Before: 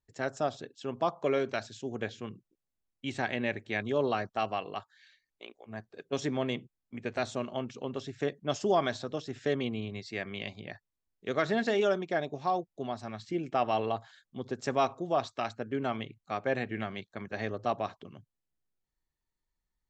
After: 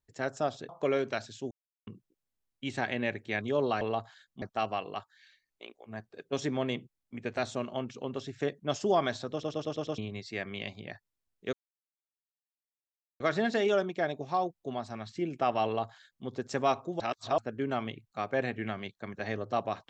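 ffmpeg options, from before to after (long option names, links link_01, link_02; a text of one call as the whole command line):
ffmpeg -i in.wav -filter_complex "[0:a]asplit=15[link_01][link_02][link_03][link_04][link_05][link_06][link_07][link_08][link_09][link_10][link_11][link_12][link_13][link_14][link_15];[link_01]atrim=end=0.692[link_16];[link_02]atrim=start=1.098:end=1.92,asetpts=PTS-STARTPTS,afade=type=out:start_time=0.818:duration=0.004:curve=hsin[link_17];[link_03]atrim=start=1.92:end=2.28,asetpts=PTS-STARTPTS,volume=0[link_18];[link_04]atrim=start=2.28:end=4.222,asetpts=PTS-STARTPTS,afade=type=in:duration=0.004:curve=hsin[link_19];[link_05]atrim=start=13.778:end=14.392[link_20];[link_06]atrim=start=4.218:end=9.232[link_21];[link_07]atrim=start=9.118:end=9.232[link_22];[link_08]atrim=start=9.118:end=9.232[link_23];[link_09]atrim=start=9.118:end=9.232[link_24];[link_10]atrim=start=9.118:end=9.232[link_25];[link_11]atrim=start=9.118:end=9.232[link_26];[link_12]atrim=start=9.778:end=11.33,asetpts=PTS-STARTPTS,afade=type=out:start_time=1.548:duration=0.004:curve=hsin,apad=pad_dur=1.67[link_27];[link_13]atrim=start=11.33:end=15.132,asetpts=PTS-STARTPTS,afade=type=in:duration=0.004:curve=hsin[link_28];[link_14]atrim=start=15.128:end=15.512,asetpts=PTS-STARTPTS,areverse[link_29];[link_15]atrim=start=15.508[link_30];[link_17][link_18][link_19]concat=n=3:v=0:a=1[link_31];[link_16][link_31]acrossfade=duration=0.004:curve1=hsin:curve2=hsin[link_32];[link_32][link_20]acrossfade=duration=0.004:curve1=hsin:curve2=hsin[link_33];[link_33][link_21]acrossfade=duration=0.004:curve1=hsin:curve2=hsin[link_34];[link_34][link_22]acrossfade=duration=0.004:curve1=hsin:curve2=hsin[link_35];[link_35][link_23]acrossfade=duration=0.004:curve1=hsin:curve2=hsin[link_36];[link_36][link_24]acrossfade=duration=0.004:curve1=hsin:curve2=hsin[link_37];[link_37][link_25]acrossfade=duration=0.004:curve1=hsin:curve2=hsin[link_38];[link_38][link_26]acrossfade=duration=0.004:curve1=hsin:curve2=hsin[link_39];[link_27][link_28]concat=n=2:v=0:a=1[link_40];[link_39][link_40]acrossfade=duration=0.004:curve1=hsin:curve2=hsin[link_41];[link_41][link_29]acrossfade=duration=0.004:curve1=hsin:curve2=hsin[link_42];[link_42][link_30]acrossfade=duration=0.004:curve1=hsin:curve2=hsin" out.wav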